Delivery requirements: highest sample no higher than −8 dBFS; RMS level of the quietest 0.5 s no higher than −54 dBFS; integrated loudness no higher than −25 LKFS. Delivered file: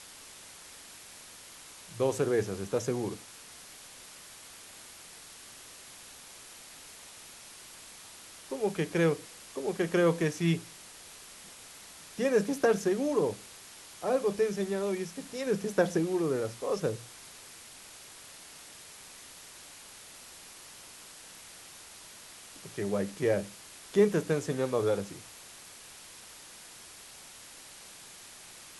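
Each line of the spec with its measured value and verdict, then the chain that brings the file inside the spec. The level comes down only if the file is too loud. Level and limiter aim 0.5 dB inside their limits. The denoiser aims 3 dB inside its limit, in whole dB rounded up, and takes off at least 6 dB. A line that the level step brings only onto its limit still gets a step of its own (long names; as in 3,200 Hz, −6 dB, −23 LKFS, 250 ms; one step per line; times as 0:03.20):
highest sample −12.5 dBFS: in spec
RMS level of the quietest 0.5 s −50 dBFS: out of spec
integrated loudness −30.5 LKFS: in spec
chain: broadband denoise 7 dB, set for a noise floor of −50 dBFS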